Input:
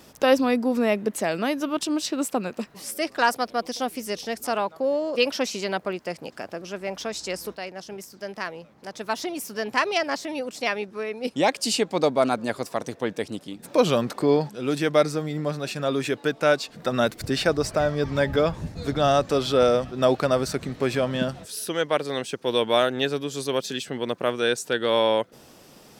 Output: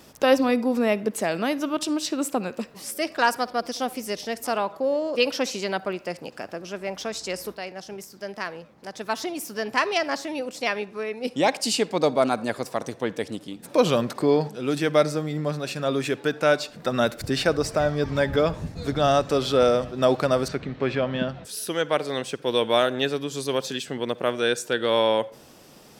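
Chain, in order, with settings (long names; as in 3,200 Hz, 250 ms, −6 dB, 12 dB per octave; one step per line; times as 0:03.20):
0:20.48–0:21.45: Chebyshev low-pass filter 3,000 Hz, order 2
on a send: convolution reverb RT60 0.45 s, pre-delay 47 ms, DRR 19 dB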